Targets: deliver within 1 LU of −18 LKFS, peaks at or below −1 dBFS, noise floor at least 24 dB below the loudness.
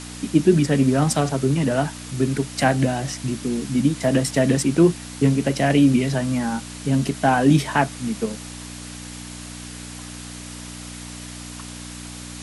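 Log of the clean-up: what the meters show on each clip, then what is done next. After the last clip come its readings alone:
mains hum 60 Hz; hum harmonics up to 300 Hz; level of the hum −36 dBFS; background noise floor −36 dBFS; target noise floor −45 dBFS; integrated loudness −20.5 LKFS; sample peak −4.0 dBFS; target loudness −18.0 LKFS
→ hum removal 60 Hz, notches 5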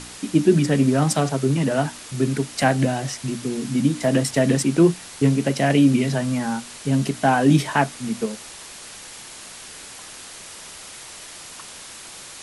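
mains hum none found; background noise floor −40 dBFS; target noise floor −45 dBFS
→ broadband denoise 6 dB, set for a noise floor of −40 dBFS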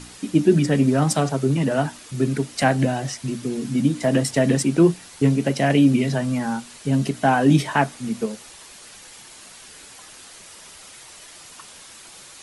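background noise floor −44 dBFS; target noise floor −45 dBFS
→ broadband denoise 6 dB, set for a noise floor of −44 dBFS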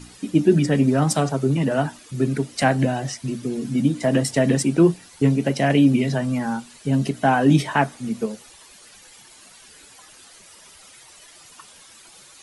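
background noise floor −48 dBFS; integrated loudness −21.0 LKFS; sample peak −4.5 dBFS; target loudness −18.0 LKFS
→ level +3 dB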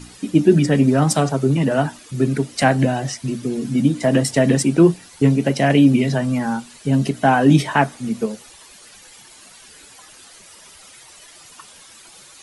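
integrated loudness −18.0 LKFS; sample peak −1.5 dBFS; background noise floor −45 dBFS

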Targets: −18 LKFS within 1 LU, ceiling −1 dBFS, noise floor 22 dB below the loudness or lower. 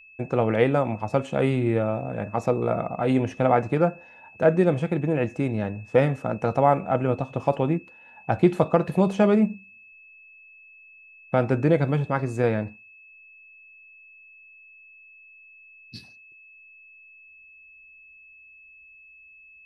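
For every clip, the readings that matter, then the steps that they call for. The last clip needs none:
interfering tone 2,600 Hz; level of the tone −48 dBFS; integrated loudness −23.5 LKFS; sample peak −4.0 dBFS; target loudness −18.0 LKFS
→ notch filter 2,600 Hz, Q 30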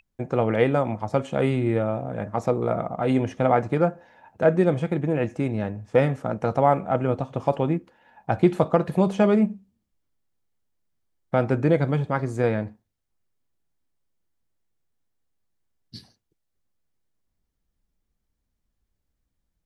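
interfering tone none found; integrated loudness −23.5 LKFS; sample peak −4.5 dBFS; target loudness −18.0 LKFS
→ level +5.5 dB
brickwall limiter −1 dBFS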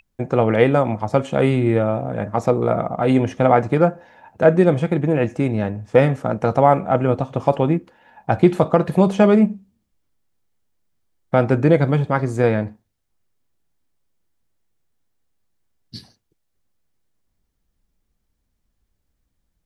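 integrated loudness −18.5 LKFS; sample peak −1.0 dBFS; background noise floor −73 dBFS

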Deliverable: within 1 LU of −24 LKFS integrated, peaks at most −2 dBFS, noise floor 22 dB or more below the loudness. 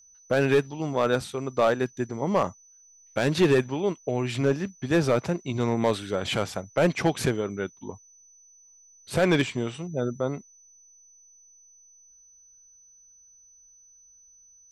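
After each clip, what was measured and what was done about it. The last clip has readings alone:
share of clipped samples 0.6%; peaks flattened at −14.0 dBFS; interfering tone 6,000 Hz; level of the tone −53 dBFS; integrated loudness −26.0 LKFS; sample peak −14.0 dBFS; target loudness −24.0 LKFS
→ clipped peaks rebuilt −14 dBFS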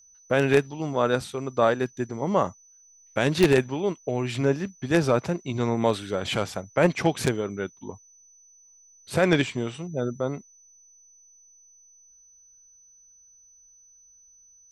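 share of clipped samples 0.0%; interfering tone 6,000 Hz; level of the tone −53 dBFS
→ notch filter 6,000 Hz, Q 30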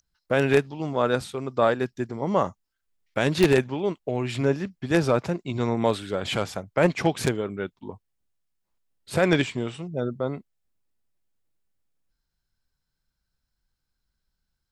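interfering tone none found; integrated loudness −25.5 LKFS; sample peak −5.0 dBFS; target loudness −24.0 LKFS
→ level +1.5 dB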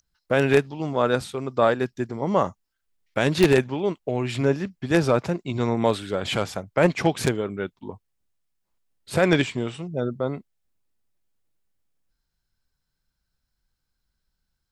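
integrated loudness −24.0 LKFS; sample peak −3.5 dBFS; background noise floor −79 dBFS

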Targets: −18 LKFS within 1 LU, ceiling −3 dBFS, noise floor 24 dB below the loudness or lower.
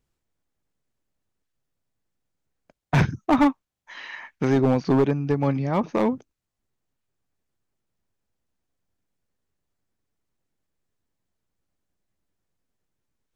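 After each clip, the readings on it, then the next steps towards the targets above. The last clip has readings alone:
share of clipped samples 0.6%; peaks flattened at −13.5 dBFS; integrated loudness −22.5 LKFS; sample peak −13.5 dBFS; target loudness −18.0 LKFS
→ clipped peaks rebuilt −13.5 dBFS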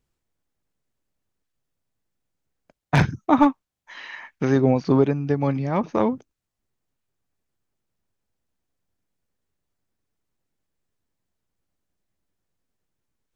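share of clipped samples 0.0%; integrated loudness −21.5 LKFS; sample peak −4.5 dBFS; target loudness −18.0 LKFS
→ level +3.5 dB
brickwall limiter −3 dBFS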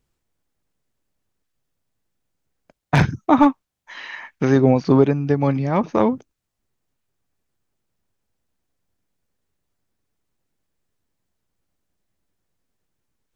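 integrated loudness −18.0 LKFS; sample peak −3.0 dBFS; background noise floor −79 dBFS

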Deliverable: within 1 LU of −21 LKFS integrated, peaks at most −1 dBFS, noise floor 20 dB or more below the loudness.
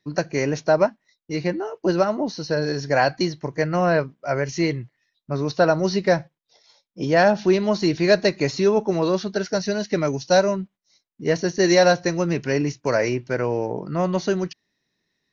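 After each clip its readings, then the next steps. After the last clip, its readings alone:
integrated loudness −22.0 LKFS; sample peak −4.5 dBFS; target loudness −21.0 LKFS
→ level +1 dB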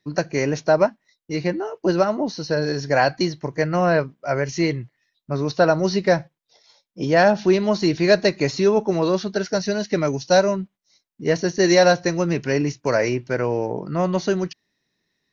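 integrated loudness −21.0 LKFS; sample peak −3.5 dBFS; background noise floor −76 dBFS

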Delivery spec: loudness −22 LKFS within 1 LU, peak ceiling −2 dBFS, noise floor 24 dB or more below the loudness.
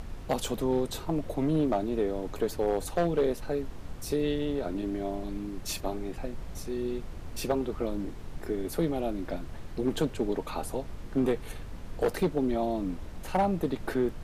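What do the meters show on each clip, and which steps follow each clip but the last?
share of clipped samples 0.5%; peaks flattened at −19.0 dBFS; background noise floor −42 dBFS; target noise floor −56 dBFS; integrated loudness −31.5 LKFS; sample peak −19.0 dBFS; target loudness −22.0 LKFS
→ clipped peaks rebuilt −19 dBFS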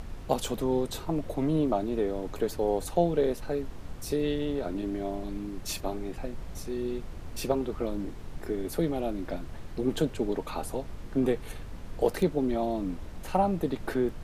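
share of clipped samples 0.0%; background noise floor −42 dBFS; target noise floor −55 dBFS
→ noise reduction from a noise print 13 dB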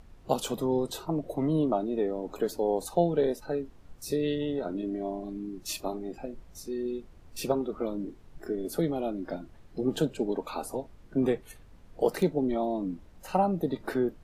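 background noise floor −53 dBFS; target noise floor −55 dBFS
→ noise reduction from a noise print 6 dB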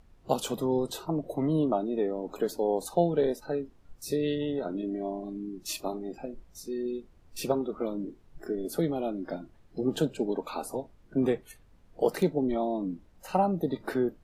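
background noise floor −58 dBFS; integrated loudness −31.0 LKFS; sample peak −10.0 dBFS; target loudness −22.0 LKFS
→ level +9 dB
brickwall limiter −2 dBFS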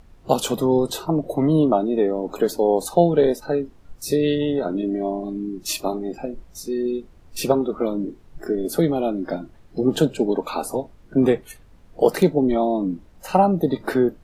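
integrated loudness −22.0 LKFS; sample peak −2.0 dBFS; background noise floor −49 dBFS

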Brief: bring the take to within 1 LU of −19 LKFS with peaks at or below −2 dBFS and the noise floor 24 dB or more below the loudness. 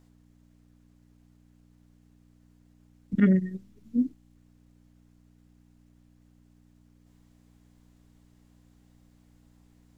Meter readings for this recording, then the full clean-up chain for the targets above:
mains hum 60 Hz; hum harmonics up to 300 Hz; level of the hum −58 dBFS; integrated loudness −27.0 LKFS; sample peak −11.0 dBFS; target loudness −19.0 LKFS
→ hum removal 60 Hz, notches 5
level +8 dB

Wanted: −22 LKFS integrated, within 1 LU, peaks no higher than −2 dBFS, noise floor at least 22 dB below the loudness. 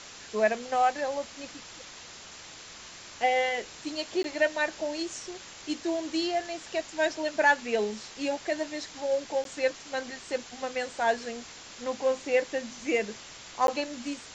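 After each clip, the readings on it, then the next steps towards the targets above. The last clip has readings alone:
number of dropouts 3; longest dropout 12 ms; background noise floor −47 dBFS; target noise floor −52 dBFS; integrated loudness −30.0 LKFS; sample peak −10.5 dBFS; target loudness −22.0 LKFS
→ repair the gap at 0:04.23/0:09.44/0:13.67, 12 ms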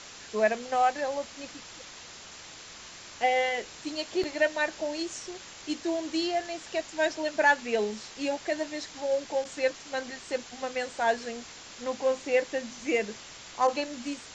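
number of dropouts 0; background noise floor −47 dBFS; target noise floor −52 dBFS
→ broadband denoise 6 dB, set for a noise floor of −47 dBFS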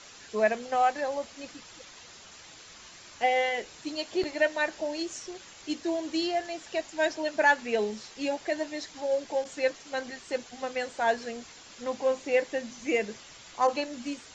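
background noise floor −50 dBFS; target noise floor −52 dBFS
→ broadband denoise 6 dB, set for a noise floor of −50 dBFS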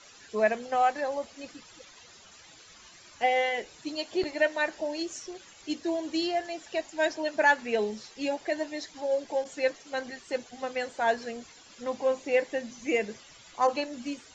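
background noise floor −53 dBFS; integrated loudness −30.0 LKFS; sample peak −11.0 dBFS; target loudness −22.0 LKFS
→ level +8 dB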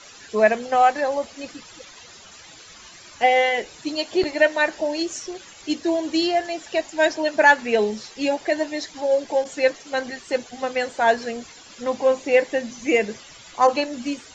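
integrated loudness −22.0 LKFS; sample peak −3.0 dBFS; background noise floor −45 dBFS

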